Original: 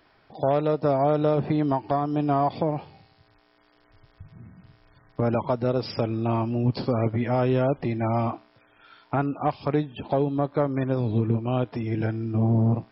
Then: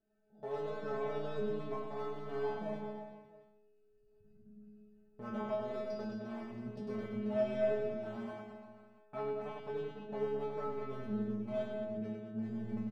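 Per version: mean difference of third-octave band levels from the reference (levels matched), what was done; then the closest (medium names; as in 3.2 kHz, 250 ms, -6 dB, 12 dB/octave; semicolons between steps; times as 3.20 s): 8.0 dB: local Wiener filter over 41 samples; transient shaper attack -2 dB, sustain +6 dB; inharmonic resonator 210 Hz, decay 0.69 s, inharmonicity 0.002; on a send: reverse bouncing-ball echo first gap 100 ms, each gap 1.15×, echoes 5; on the sum: trim +4.5 dB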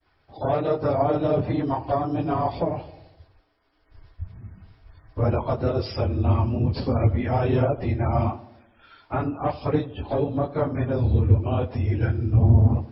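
2.5 dB: phase randomisation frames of 50 ms; expander -55 dBFS; resonant low shelf 110 Hz +10.5 dB, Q 1.5; tape echo 84 ms, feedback 69%, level -15 dB, low-pass 1 kHz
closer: second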